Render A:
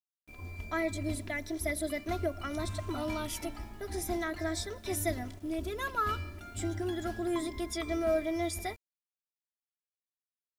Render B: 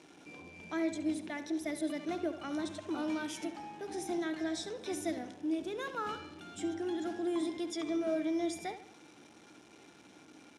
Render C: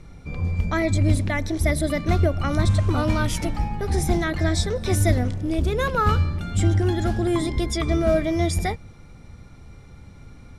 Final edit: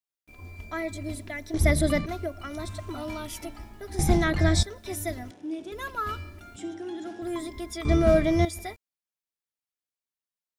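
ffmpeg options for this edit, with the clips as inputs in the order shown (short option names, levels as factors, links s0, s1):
-filter_complex "[2:a]asplit=3[s0][s1][s2];[1:a]asplit=2[s3][s4];[0:a]asplit=6[s5][s6][s7][s8][s9][s10];[s5]atrim=end=1.542[s11];[s0]atrim=start=1.538:end=2.062[s12];[s6]atrim=start=2.058:end=3.992[s13];[s1]atrim=start=3.988:end=4.632[s14];[s7]atrim=start=4.628:end=5.312[s15];[s3]atrim=start=5.308:end=5.722[s16];[s8]atrim=start=5.718:end=6.562[s17];[s4]atrim=start=6.558:end=7.222[s18];[s9]atrim=start=7.218:end=7.852[s19];[s2]atrim=start=7.848:end=8.452[s20];[s10]atrim=start=8.448[s21];[s11][s12]acrossfade=d=0.004:c1=hsin:c2=hsin[s22];[s22][s13]acrossfade=d=0.004:c1=hsin:c2=hsin[s23];[s23][s14]acrossfade=d=0.004:c1=hsin:c2=hsin[s24];[s24][s15]acrossfade=d=0.004:c1=hsin:c2=hsin[s25];[s25][s16]acrossfade=d=0.004:c1=hsin:c2=hsin[s26];[s26][s17]acrossfade=d=0.004:c1=hsin:c2=hsin[s27];[s27][s18]acrossfade=d=0.004:c1=hsin:c2=hsin[s28];[s28][s19]acrossfade=d=0.004:c1=hsin:c2=hsin[s29];[s29][s20]acrossfade=d=0.004:c1=hsin:c2=hsin[s30];[s30][s21]acrossfade=d=0.004:c1=hsin:c2=hsin"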